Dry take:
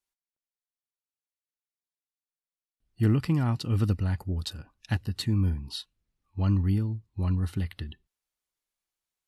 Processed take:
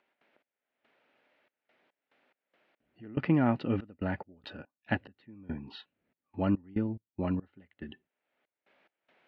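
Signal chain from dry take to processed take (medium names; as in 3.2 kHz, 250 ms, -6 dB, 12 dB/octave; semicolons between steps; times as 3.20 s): cabinet simulation 250–2500 Hz, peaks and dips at 250 Hz +4 dB, 590 Hz +6 dB, 1.1 kHz -7 dB; trance gate ".x..xxx.x.x" 71 bpm -24 dB; upward compressor, threshold -53 dBFS; trim +5 dB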